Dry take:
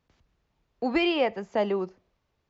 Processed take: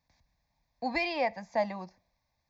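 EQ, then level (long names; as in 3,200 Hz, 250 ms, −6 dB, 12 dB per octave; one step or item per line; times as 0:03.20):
bass and treble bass −4 dB, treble +5 dB
phaser with its sweep stopped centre 2,000 Hz, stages 8
0.0 dB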